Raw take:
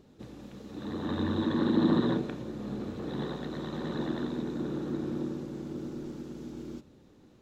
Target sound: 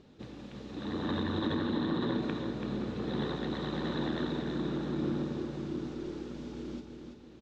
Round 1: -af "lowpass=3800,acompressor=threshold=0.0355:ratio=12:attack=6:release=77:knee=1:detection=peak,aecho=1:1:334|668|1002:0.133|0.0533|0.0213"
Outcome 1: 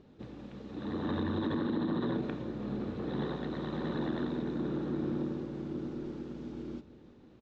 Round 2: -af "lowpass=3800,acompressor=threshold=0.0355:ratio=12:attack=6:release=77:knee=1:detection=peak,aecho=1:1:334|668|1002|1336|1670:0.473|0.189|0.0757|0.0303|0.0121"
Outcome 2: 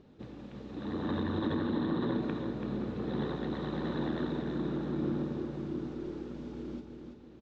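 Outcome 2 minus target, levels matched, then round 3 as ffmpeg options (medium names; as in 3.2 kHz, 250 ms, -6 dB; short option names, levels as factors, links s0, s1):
4 kHz band -6.0 dB
-af "lowpass=3800,highshelf=f=2600:g=9.5,acompressor=threshold=0.0355:ratio=12:attack=6:release=77:knee=1:detection=peak,aecho=1:1:334|668|1002|1336|1670:0.473|0.189|0.0757|0.0303|0.0121"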